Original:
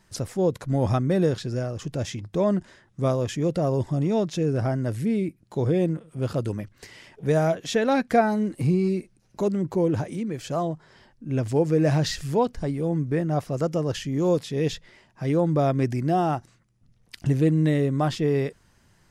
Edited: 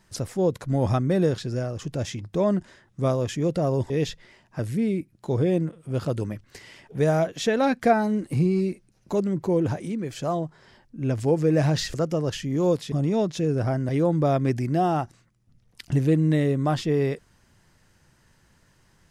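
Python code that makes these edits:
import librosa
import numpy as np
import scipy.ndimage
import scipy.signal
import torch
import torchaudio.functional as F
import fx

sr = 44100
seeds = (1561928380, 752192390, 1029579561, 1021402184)

y = fx.edit(x, sr, fx.swap(start_s=3.9, length_s=0.97, other_s=14.54, other_length_s=0.69),
    fx.cut(start_s=12.22, length_s=1.34), tone=tone)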